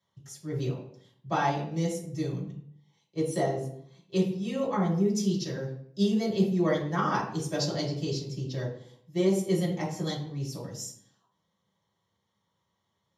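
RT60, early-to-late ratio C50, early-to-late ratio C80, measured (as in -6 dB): 0.60 s, 5.5 dB, 9.5 dB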